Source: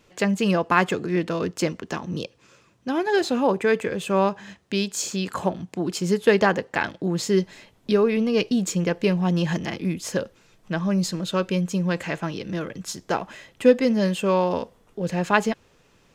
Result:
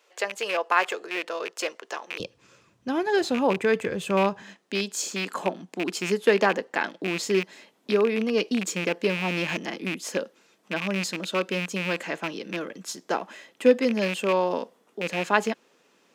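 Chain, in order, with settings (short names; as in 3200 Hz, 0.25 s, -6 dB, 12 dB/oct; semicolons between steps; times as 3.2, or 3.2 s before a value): rattling part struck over -27 dBFS, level -17 dBFS; HPF 460 Hz 24 dB/oct, from 2.2 s 55 Hz, from 4.42 s 220 Hz; gain -2 dB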